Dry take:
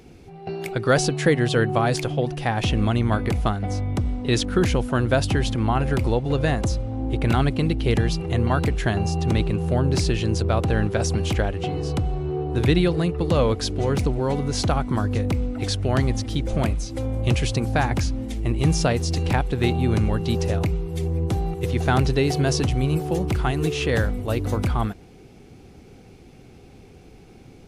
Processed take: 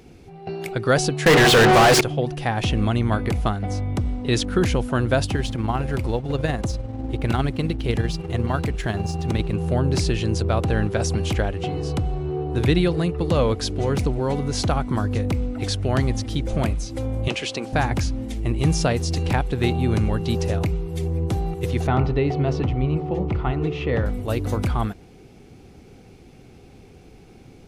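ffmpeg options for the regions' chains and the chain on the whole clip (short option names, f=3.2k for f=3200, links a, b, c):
-filter_complex "[0:a]asettb=1/sr,asplit=3[a][b][c];[a]atrim=end=1.264[d];[b]atrim=start=1.26:end=2.01,asetpts=PTS-STARTPTS,afade=t=in:d=0.004:c=qsin,afade=t=out:st=0.746:d=0.004:c=qsin,bandreject=f=60:t=h:w=6,bandreject=f=120:t=h:w=6,bandreject=f=180:t=h:w=6,bandreject=f=240:t=h:w=6,bandreject=f=300:t=h:w=6,bandreject=f=360:t=h:w=6,bandreject=f=420:t=h:w=6,bandreject=f=480:t=h:w=6,asplit=2[e][f];[f]highpass=f=720:p=1,volume=39dB,asoftclip=type=tanh:threshold=-7dB[g];[e][g]amix=inputs=2:normalize=0,lowpass=f=4.6k:p=1,volume=-6dB[h];[c]atrim=start=2.006[i];[d][h]acrossfade=d=0.004:c1=hsin:c2=qsin[j];[j][i]acrossfade=d=0.004:c1=qsin:c2=hsin,asettb=1/sr,asplit=3[k][l][m];[k]atrim=end=5.254[n];[l]atrim=start=5.25:end=9.53,asetpts=PTS-STARTPTS,afade=t=in:d=0.004:c=qsin,afade=t=out:st=4.276:d=0.004:c=qsin,tremolo=f=20:d=0.43,aeval=exprs='sgn(val(0))*max(abs(val(0))-0.00422,0)':c=same[o];[m]atrim=start=9.526[p];[n][o]acrossfade=d=0.004:c1=hsin:c2=qsin[q];[q][p]acrossfade=d=0.004:c1=qsin:c2=hsin,asettb=1/sr,asplit=3[r][s][t];[r]atrim=end=17.284[u];[s]atrim=start=17.28:end=17.73,asetpts=PTS-STARTPTS,afade=t=in:d=0.004:c=qsin,afade=t=out:st=0.446:d=0.004:c=qsin,highpass=300,lowpass=7.6k,equalizer=f=2.9k:w=2:g=4[v];[t]atrim=start=17.726[w];[u][v]acrossfade=d=0.004:c1=hsin:c2=qsin[x];[x][w]acrossfade=d=0.004:c1=qsin:c2=hsin,asettb=1/sr,asplit=3[y][z][aa];[y]atrim=end=21.874[ab];[z]atrim=start=21.87:end=24.06,asetpts=PTS-STARTPTS,afade=t=in:d=0.004:c=qsin,afade=t=out:st=2.186:d=0.004:c=qsin,lowpass=2.2k,bandreject=f=1.6k:w=5.6,bandreject=f=54.6:t=h:w=4,bandreject=f=109.2:t=h:w=4,bandreject=f=163.8:t=h:w=4,bandreject=f=218.4:t=h:w=4,bandreject=f=273:t=h:w=4,bandreject=f=327.6:t=h:w=4,bandreject=f=382.2:t=h:w=4,bandreject=f=436.8:t=h:w=4,bandreject=f=491.4:t=h:w=4,bandreject=f=546:t=h:w=4,bandreject=f=600.6:t=h:w=4,bandreject=f=655.2:t=h:w=4,bandreject=f=709.8:t=h:w=4,bandreject=f=764.4:t=h:w=4,bandreject=f=819:t=h:w=4,bandreject=f=873.6:t=h:w=4,bandreject=f=928.2:t=h:w=4,bandreject=f=982.8:t=h:w=4,bandreject=f=1.0374k:t=h:w=4,bandreject=f=1.092k:t=h:w=4,bandreject=f=1.1466k:t=h:w=4,bandreject=f=1.2012k:t=h:w=4,bandreject=f=1.2558k:t=h:w=4,bandreject=f=1.3104k:t=h:w=4,bandreject=f=1.365k:t=h:w=4,bandreject=f=1.4196k:t=h:w=4,bandreject=f=1.4742k:t=h:w=4,bandreject=f=1.5288k:t=h:w=4[ac];[aa]atrim=start=24.056[ad];[ab][ac]acrossfade=d=0.004:c1=hsin:c2=qsin[ae];[ae][ad]acrossfade=d=0.004:c1=qsin:c2=hsin"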